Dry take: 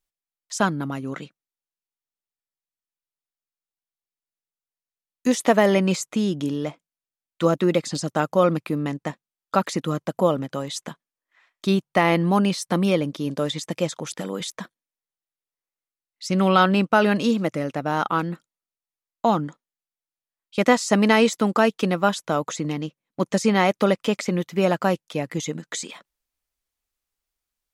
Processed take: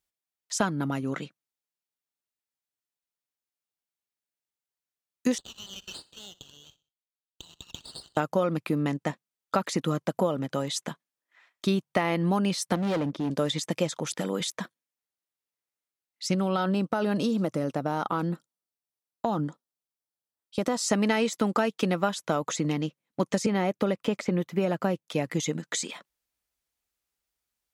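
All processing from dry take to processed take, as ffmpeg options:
ffmpeg -i in.wav -filter_complex "[0:a]asettb=1/sr,asplit=3[link_01][link_02][link_03];[link_01]atrim=end=5.384[link_04];[link_02]atrim=start=5.38:end=8.17,asetpts=PTS-STARTPTS,afade=type=in:duration=0.004:curve=qsin,afade=type=out:start_time=2.786:duration=0.004:curve=qsin,asuperpass=centerf=3600:order=12:qfactor=1.8,aecho=1:1:62|124|186:0.0944|0.0387|0.0159,atrim=end_sample=123039,aeval=exprs='max(val(0),0)':channel_layout=same[link_05];[link_03]atrim=start=8.166[link_06];[link_04][link_05]acrossfade=duration=0.004:curve1=hsin:curve2=qsin[link_07];[link_07][link_06]acrossfade=duration=0.004:curve1=qsin:curve2=hsin,asettb=1/sr,asplit=3[link_08][link_09][link_10];[link_08]atrim=end=12.754[link_11];[link_09]atrim=start=12.75:end=13.31,asetpts=PTS-STARTPTS,afade=type=in:duration=0.004:curve=qsin,afade=type=out:start_time=0.556:duration=0.004:curve=qsin,lowpass=9900,highshelf=frequency=2700:gain=-10.5,asoftclip=type=hard:threshold=-24dB[link_12];[link_10]atrim=start=13.306[link_13];[link_11][link_12]acrossfade=duration=0.004:curve1=hsin:curve2=qsin[link_14];[link_14][link_13]acrossfade=duration=0.004:curve1=qsin:curve2=hsin,asettb=1/sr,asplit=3[link_15][link_16][link_17];[link_15]atrim=end=16.344[link_18];[link_16]atrim=start=16.34:end=20.84,asetpts=PTS-STARTPTS,afade=type=in:duration=0.004:curve=qsin,afade=type=out:start_time=4.496:duration=0.004:curve=qsin,equalizer=frequency=2200:width_type=o:width=1:gain=-9,bandreject=frequency=6700:width=14,acompressor=threshold=-21dB:ratio=4:attack=3.2:release=140:knee=1:detection=peak[link_19];[link_17]atrim=start=20.836[link_20];[link_18][link_19]acrossfade=duration=0.004:curve1=hsin:curve2=qsin[link_21];[link_21][link_20]acrossfade=duration=0.004:curve1=qsin:curve2=hsin,asettb=1/sr,asplit=3[link_22][link_23][link_24];[link_22]atrim=end=23.464[link_25];[link_23]atrim=start=23.46:end=25.09,asetpts=PTS-STARTPTS,afade=type=in:duration=0.004:curve=qsin,afade=type=out:start_time=1.626:duration=0.004:curve=qsin,equalizer=frequency=5400:width_type=o:width=2.8:gain=-7.5,acrossover=split=680|1600|6900[link_26][link_27][link_28][link_29];[link_26]acompressor=threshold=-19dB:ratio=3[link_30];[link_27]acompressor=threshold=-36dB:ratio=3[link_31];[link_28]acompressor=threshold=-33dB:ratio=3[link_32];[link_29]acompressor=threshold=-57dB:ratio=3[link_33];[link_30][link_31][link_32][link_33]amix=inputs=4:normalize=0[link_34];[link_24]atrim=start=25.086[link_35];[link_25][link_34]acrossfade=duration=0.004:curve1=hsin:curve2=qsin[link_36];[link_36][link_35]acrossfade=duration=0.004:curve1=qsin:curve2=hsin,highpass=52,bandreject=frequency=1100:width=23,acompressor=threshold=-21dB:ratio=6" out.wav

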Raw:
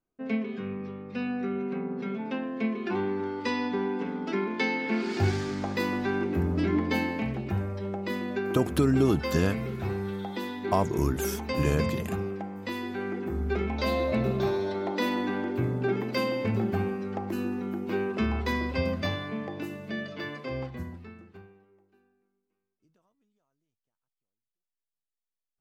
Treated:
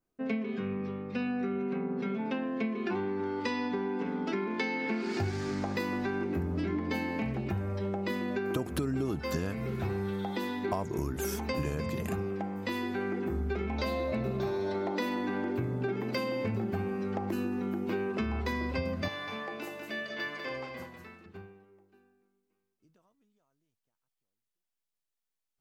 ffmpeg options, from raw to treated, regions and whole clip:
ffmpeg -i in.wav -filter_complex "[0:a]asettb=1/sr,asplit=3[link_01][link_02][link_03];[link_01]atrim=end=19.084[link_04];[link_02]atrim=start=19.08:end=21.26,asetpts=PTS-STARTPTS,afade=type=in:duration=0.004:curve=qsin,afade=type=out:start_time=2.176:duration=0.004:curve=qsin,highpass=frequency=850:poles=1,aecho=1:1:196:0.531,atrim=end_sample=96138[link_05];[link_03]atrim=start=21.256[link_06];[link_04][link_05]acrossfade=duration=0.004:curve1=hsin:curve2=qsin[link_07];[link_07][link_06]acrossfade=duration=0.004:curve1=qsin:curve2=hsin,adynamicequalizer=threshold=0.00178:dfrequency=3300:dqfactor=3.5:tfrequency=3300:tqfactor=3.5:attack=5:release=100:ratio=0.375:range=2:mode=cutabove:tftype=bell,acompressor=threshold=-31dB:ratio=6,volume=2dB" out.wav

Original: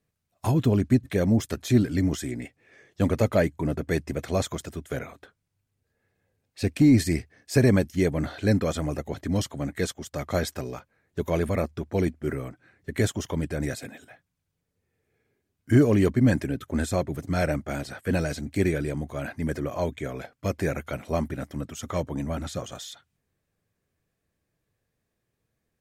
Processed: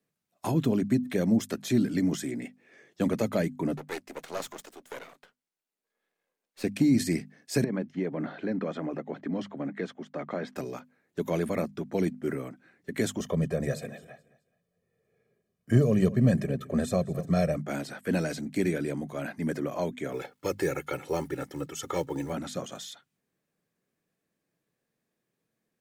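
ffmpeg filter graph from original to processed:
ffmpeg -i in.wav -filter_complex "[0:a]asettb=1/sr,asplit=3[link_01][link_02][link_03];[link_01]atrim=end=3.774[link_04];[link_02]atrim=start=3.77:end=6.64,asetpts=PTS-STARTPTS,afade=type=in:duration=0.004:curve=qsin,afade=type=out:start_time=2.866:duration=0.004:curve=qsin,highpass=400,aeval=exprs='max(val(0),0)':channel_layout=same[link_05];[link_03]atrim=start=6.636[link_06];[link_04][link_05]acrossfade=duration=0.004:curve1=hsin:curve2=qsin[link_07];[link_07][link_06]acrossfade=duration=0.004:curve1=qsin:curve2=hsin,asettb=1/sr,asplit=3[link_08][link_09][link_10];[link_08]atrim=end=7.644[link_11];[link_09]atrim=start=7.64:end=10.56,asetpts=PTS-STARTPTS,afade=type=in:duration=0.004:curve=qsin,afade=type=out:start_time=2.916:duration=0.004:curve=qsin,highpass=160,lowpass=2200,acompressor=threshold=-26dB:ratio=3:attack=3.2:release=140:knee=1:detection=peak[link_12];[link_10]atrim=start=10.556[link_13];[link_11][link_12]acrossfade=duration=0.004:curve1=hsin:curve2=qsin[link_14];[link_14][link_13]acrossfade=duration=0.004:curve1=qsin:curve2=hsin,asettb=1/sr,asplit=3[link_15][link_16][link_17];[link_15]atrim=end=13.204[link_18];[link_16]atrim=start=13.2:end=17.57,asetpts=PTS-STARTPTS,afade=type=in:duration=0.004:curve=qsin,afade=type=out:start_time=4.366:duration=0.004:curve=qsin,tiltshelf=frequency=820:gain=5,aecho=1:1:1.7:0.77,atrim=end_sample=192717,aecho=1:1:212|424|636:0.1|0.033|0.0109,atrim=end_sample=192717[link_19];[link_17]atrim=start=17.566[link_20];[link_18][link_19]acrossfade=duration=0.004:curve1=hsin:curve2=qsin[link_21];[link_21][link_20]acrossfade=duration=0.004:curve1=qsin:curve2=hsin,asettb=1/sr,asplit=3[link_22][link_23][link_24];[link_22]atrim=end=20.124[link_25];[link_23]atrim=start=20.12:end=22.33,asetpts=PTS-STARTPTS,afade=type=in:duration=0.004:curve=qsin,afade=type=out:start_time=2.206:duration=0.004:curve=qsin,aeval=exprs='val(0)+0.00224*(sin(2*PI*50*n/s)+sin(2*PI*2*50*n/s)/2+sin(2*PI*3*50*n/s)/3+sin(2*PI*4*50*n/s)/4+sin(2*PI*5*50*n/s)/5)':channel_layout=same,aecho=1:1:2.3:0.97,atrim=end_sample=97461,acrusher=bits=8:mode=log:mix=0:aa=0.000001[link_26];[link_24]atrim=start=22.326[link_27];[link_25][link_26]acrossfade=duration=0.004:curve1=hsin:curve2=qsin[link_28];[link_28][link_27]acrossfade=duration=0.004:curve1=qsin:curve2=hsin,lowshelf=frequency=120:width_type=q:width=1.5:gain=-14,bandreject=frequency=50:width_type=h:width=6,bandreject=frequency=100:width_type=h:width=6,bandreject=frequency=150:width_type=h:width=6,bandreject=frequency=200:width_type=h:width=6,bandreject=frequency=250:width_type=h:width=6,acrossover=split=220|3000[link_29][link_30][link_31];[link_30]acompressor=threshold=-23dB:ratio=6[link_32];[link_29][link_32][link_31]amix=inputs=3:normalize=0,volume=-2dB" out.wav

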